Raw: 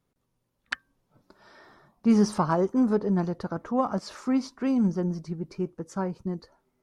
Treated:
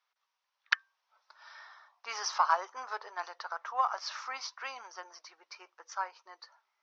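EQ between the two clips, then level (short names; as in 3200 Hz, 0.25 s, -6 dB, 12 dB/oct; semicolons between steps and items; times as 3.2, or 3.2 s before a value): inverse Chebyshev high-pass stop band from 200 Hz, stop band 70 dB; elliptic low-pass 5900 Hz, stop band 40 dB; +4.0 dB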